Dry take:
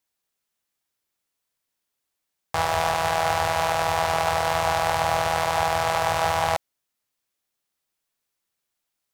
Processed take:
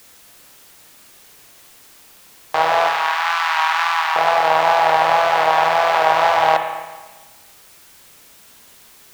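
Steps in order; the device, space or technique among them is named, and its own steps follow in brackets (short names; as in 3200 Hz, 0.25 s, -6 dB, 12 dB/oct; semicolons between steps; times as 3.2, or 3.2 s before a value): 2.88–4.16 steep high-pass 970 Hz 36 dB/oct; dictaphone (BPF 360–3800 Hz; AGC; wow and flutter; white noise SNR 26 dB); spring tank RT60 1.3 s, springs 31/55 ms, chirp 65 ms, DRR 5 dB; gain -1.5 dB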